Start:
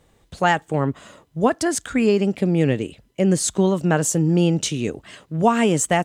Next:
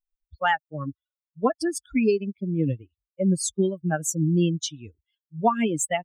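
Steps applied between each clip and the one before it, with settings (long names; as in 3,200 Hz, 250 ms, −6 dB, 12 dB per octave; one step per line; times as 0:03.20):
spectral dynamics exaggerated over time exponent 3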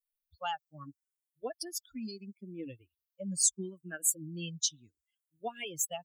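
pitch vibrato 1.3 Hz 31 cents
first-order pre-emphasis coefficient 0.9
frequency shifter mixed with the dry sound +0.74 Hz
level +4.5 dB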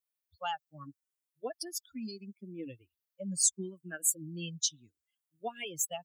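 high-pass filter 85 Hz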